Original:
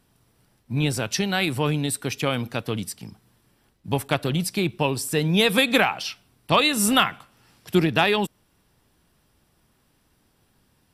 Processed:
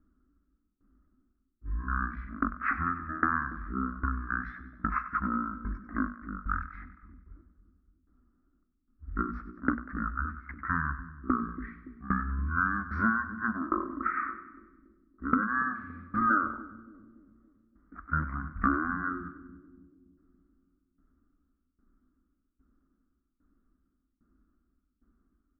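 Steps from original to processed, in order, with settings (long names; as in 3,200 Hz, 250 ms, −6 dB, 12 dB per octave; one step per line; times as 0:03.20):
drawn EQ curve 160 Hz 0 dB, 260 Hz −21 dB, 610 Hz +11 dB, 1,100 Hz −15 dB, 2,100 Hz −15 dB, 3,000 Hz +11 dB, 5,700 Hz −18 dB
shaped tremolo saw down 2.9 Hz, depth 95%
downward compressor 6 to 1, threshold −27 dBFS, peak gain reduction 15.5 dB
wrong playback speed 78 rpm record played at 33 rpm
low-pass that shuts in the quiet parts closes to 520 Hz, open at −28 dBFS
high shelf with overshoot 2,700 Hz −10 dB, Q 3
mains-hum notches 60/120/180/240 Hz
on a send: echo with a time of its own for lows and highs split 460 Hz, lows 284 ms, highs 96 ms, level −13 dB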